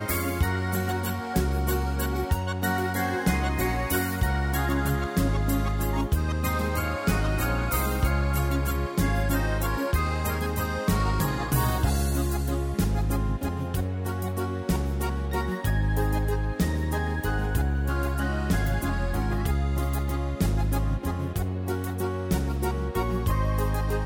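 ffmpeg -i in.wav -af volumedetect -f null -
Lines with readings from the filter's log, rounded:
mean_volume: -25.5 dB
max_volume: -10.7 dB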